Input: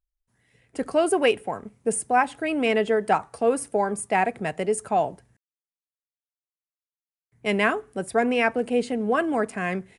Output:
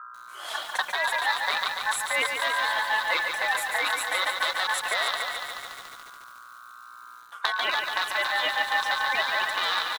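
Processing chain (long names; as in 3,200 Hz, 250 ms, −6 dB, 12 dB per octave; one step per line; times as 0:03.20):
loose part that buzzes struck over −41 dBFS, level −13 dBFS
camcorder AGC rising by 57 dB per second
dynamic equaliser 8,700 Hz, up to −6 dB, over −42 dBFS, Q 0.72
mains hum 60 Hz, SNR 23 dB
reverb reduction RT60 0.58 s
flanger 0.41 Hz, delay 3.2 ms, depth 3.2 ms, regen +14%
in parallel at −9 dB: soft clipping −17.5 dBFS, distortion −14 dB
on the sum: ring modulation 1,300 Hz
high-pass filter 720 Hz 12 dB per octave
far-end echo of a speakerphone 290 ms, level −17 dB
reversed playback
downward compressor 5 to 1, threshold −34 dBFS, peak gain reduction 16 dB
reversed playback
feedback echo at a low word length 143 ms, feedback 80%, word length 9 bits, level −5.5 dB
level +9 dB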